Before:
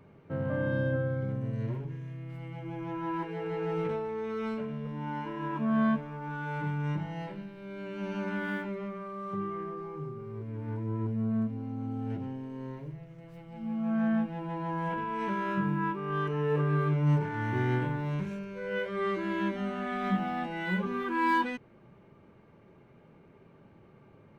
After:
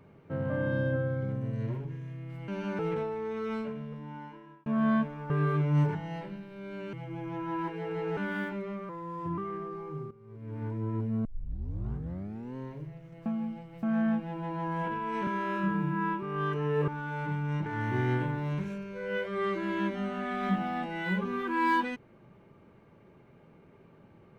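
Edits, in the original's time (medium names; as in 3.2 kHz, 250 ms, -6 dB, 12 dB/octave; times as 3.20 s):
2.48–3.72 s: swap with 7.99–8.30 s
4.46–5.59 s: fade out
6.23–7.01 s: swap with 16.62–17.27 s
9.02–9.44 s: speed 86%
10.17–10.62 s: fade in quadratic, from -14.5 dB
11.31 s: tape start 1.31 s
13.32–13.89 s: reverse
15.33–15.97 s: stretch 1.5×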